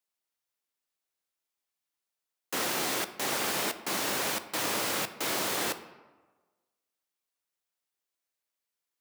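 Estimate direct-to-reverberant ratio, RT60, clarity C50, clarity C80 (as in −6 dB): 10.5 dB, 1.3 s, 13.0 dB, 15.0 dB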